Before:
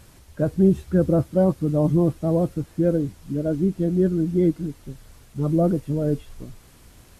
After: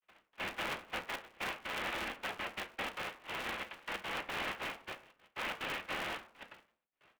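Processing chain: gate with hold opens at -38 dBFS; comb 5.7 ms, depth 57%; peak limiter -9.5 dBFS, peak gain reduction 5.5 dB; waveshaping leveller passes 2; compression 4:1, threshold -24 dBFS, peak gain reduction 10 dB; noise-vocoded speech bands 1; flange 0.33 Hz, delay 4.9 ms, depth 9.3 ms, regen -62%; trance gate ".xx.xxxxxxxx.x.x" 182 bpm -24 dB; mistuned SSB +120 Hz 210–2800 Hz; reverberation RT60 0.45 s, pre-delay 4 ms, DRR 4 dB; polarity switched at an audio rate 140 Hz; trim -7 dB

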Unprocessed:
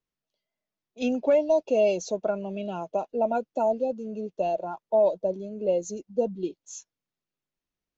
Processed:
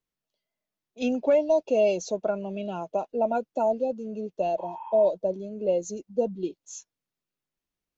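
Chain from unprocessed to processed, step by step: spectral replace 4.61–5.06 s, 780–3300 Hz after

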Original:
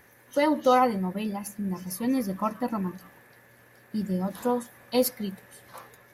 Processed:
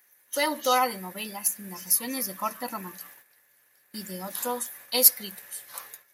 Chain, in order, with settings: gate -52 dBFS, range -13 dB; tilt EQ +4.5 dB/octave; trim -1 dB

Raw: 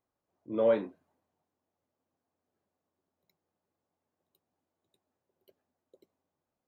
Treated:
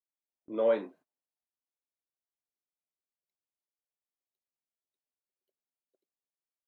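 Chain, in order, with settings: Bessel high-pass 290 Hz, order 2; gate -57 dBFS, range -23 dB

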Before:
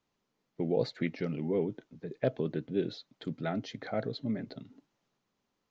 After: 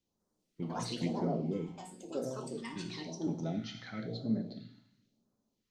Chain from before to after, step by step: 1.68–2.76 s: feedback comb 130 Hz, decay 0.6 s, harmonics all, mix 90%; two-slope reverb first 0.89 s, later 2.3 s, from -24 dB, DRR 2.5 dB; ever faster or slower copies 199 ms, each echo +6 st, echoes 2; phase shifter stages 2, 0.98 Hz, lowest notch 440–2500 Hz; trim -3 dB

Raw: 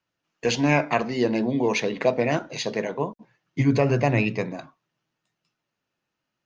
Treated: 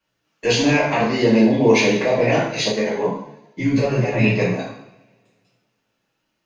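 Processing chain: peak limiter -14.5 dBFS, peak gain reduction 7 dB; two-slope reverb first 0.65 s, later 2.1 s, from -26 dB, DRR -8 dB; 2.72–4.24 s: three-phase chorus

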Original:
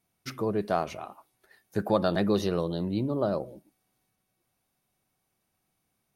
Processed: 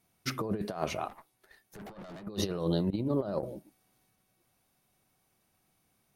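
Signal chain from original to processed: 2.90–3.43 s: gate -28 dBFS, range -19 dB; compressor with a negative ratio -31 dBFS, ratio -0.5; 1.08–2.27 s: valve stage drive 43 dB, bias 0.8

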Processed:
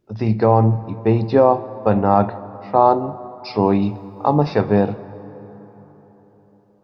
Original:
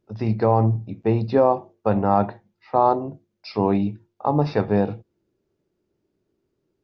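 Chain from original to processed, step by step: 3.82–4.35 s: treble shelf 3.2 kHz +11.5 dB; plate-style reverb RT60 4.4 s, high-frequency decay 0.5×, DRR 15.5 dB; trim +4 dB

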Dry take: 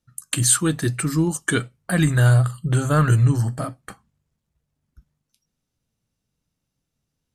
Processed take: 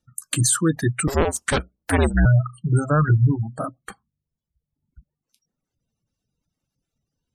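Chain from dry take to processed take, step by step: 1.07–2.26 s: cycle switcher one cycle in 2, inverted; spectral gate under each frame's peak -25 dB strong; reverb removal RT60 1.1 s; loudness maximiser +10.5 dB; trim -8.5 dB

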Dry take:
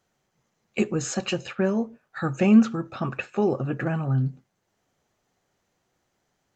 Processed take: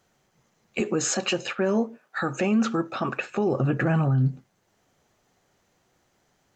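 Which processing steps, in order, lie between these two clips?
0.80–3.30 s: high-pass 240 Hz 12 dB/octave; peak limiter -21.5 dBFS, peak gain reduction 11 dB; trim +6 dB

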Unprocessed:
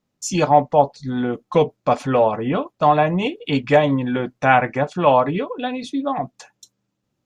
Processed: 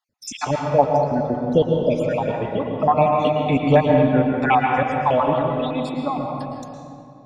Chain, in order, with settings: random holes in the spectrogram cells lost 59%; bass shelf 81 Hz +9 dB; reverberation RT60 2.5 s, pre-delay 106 ms, DRR 0.5 dB; trim -1 dB

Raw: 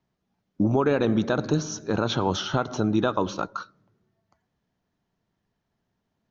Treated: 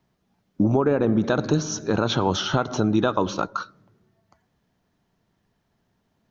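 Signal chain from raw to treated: 0.77–1.24 s: peaking EQ 4.3 kHz -13.5 dB 2 oct; in parallel at +2 dB: compression, threshold -32 dBFS, peak gain reduction 14 dB

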